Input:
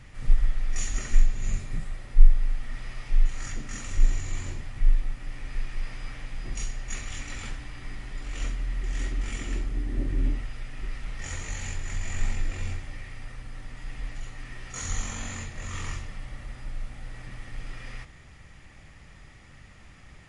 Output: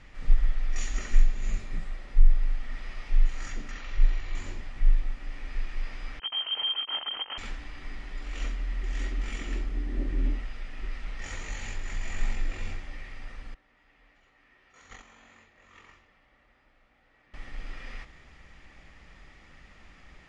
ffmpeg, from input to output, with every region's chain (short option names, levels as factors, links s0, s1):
-filter_complex "[0:a]asettb=1/sr,asplit=3[s0][s1][s2];[s0]atrim=end=3.714[s3];[s1]atrim=start=3.71:end=4.35,asetpts=PTS-STARTPTS,afade=t=in:d=0.004:c=qsin,afade=t=out:st=0.636:d=0.004:c=qsin,lowpass=f=4800:w=0.5412,lowpass=f=4800:w=1.3066,equalizer=f=200:w=0.81:g=-8[s4];[s2]atrim=start=4.346[s5];[s3][s4]acrossfade=d=0.004:c1=hsin:c2=qsin[s6];[s6][s5]acrossfade=d=0.004:c1=qsin:c2=hsin,asettb=1/sr,asplit=3[s7][s8][s9];[s7]atrim=end=6.194[s10];[s8]atrim=start=6.19:end=7.38,asetpts=PTS-STARTPTS,afade=t=in:d=0.004:c=qsin,afade=t=out:st=1.186:d=0.004:c=qsin,bandreject=f=1700:w=15,acrusher=bits=4:mix=0:aa=0.5,lowpass=f=2700:t=q:w=0.5098,lowpass=f=2700:t=q:w=0.6013,lowpass=f=2700:t=q:w=0.9,lowpass=f=2700:t=q:w=2.563,afreqshift=-3200[s11];[s9]atrim=start=7.376[s12];[s10][s11]acrossfade=d=0.004:c1=hsin:c2=qsin[s13];[s13][s12]acrossfade=d=0.004:c1=qsin:c2=hsin,asettb=1/sr,asplit=3[s14][s15][s16];[s14]atrim=end=13.544[s17];[s15]atrim=start=13.54:end=17.34,asetpts=PTS-STARTPTS,afade=t=in:d=0.004:c=qsin,afade=t=out:st=3.796:d=0.004:c=qsin,highpass=52,bass=f=250:g=-8,treble=f=4000:g=-9,agate=range=0.2:threshold=0.0126:ratio=16:release=100:detection=peak[s18];[s16]atrim=start=17.336[s19];[s17][s18]acrossfade=d=0.004:c1=hsin:c2=qsin[s20];[s20][s19]acrossfade=d=0.004:c1=qsin:c2=hsin,lowpass=5300,equalizer=f=110:w=1.6:g=-12.5,alimiter=level_in=2:limit=0.891:release=50:level=0:latency=1,volume=0.473"